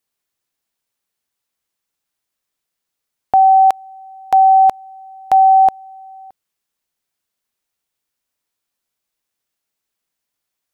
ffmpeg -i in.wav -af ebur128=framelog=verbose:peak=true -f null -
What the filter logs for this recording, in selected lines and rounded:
Integrated loudness:
  I:         -11.9 LUFS
  Threshold: -24.0 LUFS
Loudness range:
  LRA:         6.3 LU
  Threshold: -36.5 LUFS
  LRA low:   -19.7 LUFS
  LRA high:  -13.5 LUFS
True peak:
  Peak:       -4.7 dBFS